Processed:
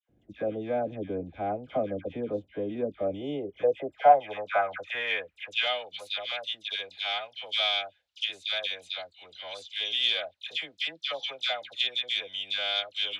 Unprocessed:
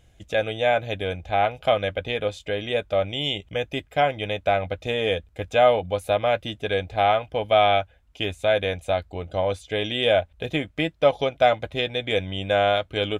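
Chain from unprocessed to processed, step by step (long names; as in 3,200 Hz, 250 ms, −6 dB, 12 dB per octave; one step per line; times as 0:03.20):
harmonic generator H 4 −26 dB, 7 −32 dB, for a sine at −5 dBFS
all-pass dispersion lows, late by 95 ms, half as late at 1,400 Hz
band-pass filter sweep 270 Hz → 4,000 Hz, 0:03.03–0:05.87
level +5.5 dB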